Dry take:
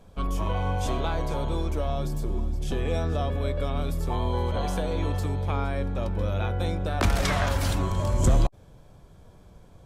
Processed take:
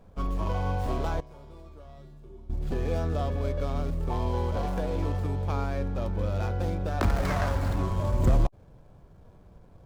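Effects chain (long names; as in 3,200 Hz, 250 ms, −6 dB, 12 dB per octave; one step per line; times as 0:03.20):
running median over 15 samples
0:01.20–0:02.50: tuned comb filter 130 Hz, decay 0.75 s, harmonics odd, mix 90%
level −1.5 dB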